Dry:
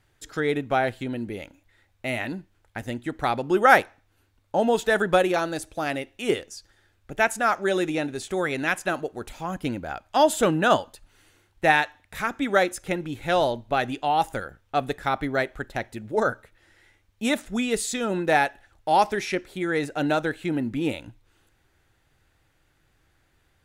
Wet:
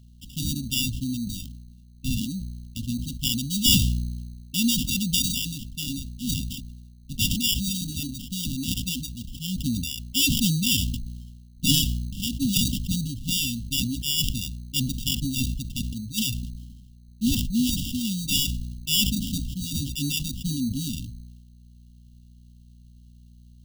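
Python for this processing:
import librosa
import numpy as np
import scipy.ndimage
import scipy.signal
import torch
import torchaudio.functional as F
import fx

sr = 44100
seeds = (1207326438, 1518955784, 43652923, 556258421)

y = fx.dereverb_blind(x, sr, rt60_s=1.2)
y = fx.add_hum(y, sr, base_hz=60, snr_db=28)
y = fx.sample_hold(y, sr, seeds[0], rate_hz=2100.0, jitter_pct=0)
y = fx.brickwall_bandstop(y, sr, low_hz=280.0, high_hz=2700.0)
y = fx.sustainer(y, sr, db_per_s=39.0)
y = F.gain(torch.from_numpy(y), 4.5).numpy()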